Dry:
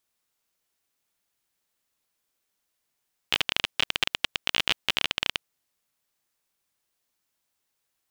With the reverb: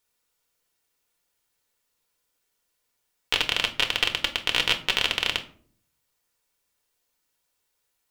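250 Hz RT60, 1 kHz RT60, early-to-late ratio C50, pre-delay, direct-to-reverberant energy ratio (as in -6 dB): 0.80 s, 0.45 s, 14.0 dB, 4 ms, 4.5 dB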